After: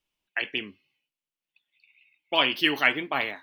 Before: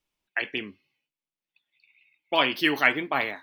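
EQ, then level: peaking EQ 2.9 kHz +6 dB 0.43 oct; -2.0 dB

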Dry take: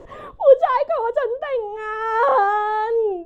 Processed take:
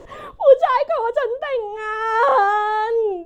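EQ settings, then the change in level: treble shelf 2.1 kHz +7.5 dB; 0.0 dB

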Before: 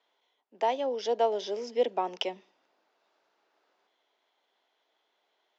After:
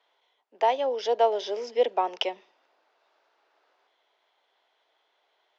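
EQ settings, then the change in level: high-pass 430 Hz 12 dB/octave; distance through air 78 m; +5.5 dB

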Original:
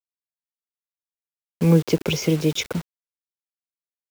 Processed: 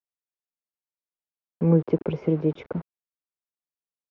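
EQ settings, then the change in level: low-pass 1 kHz 12 dB/octave; distance through air 68 m; bass shelf 110 Hz -8 dB; -1.0 dB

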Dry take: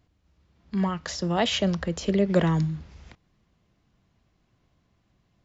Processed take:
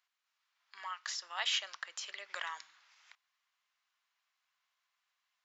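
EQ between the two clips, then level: high-pass 1.1 kHz 24 dB/octave; -5.0 dB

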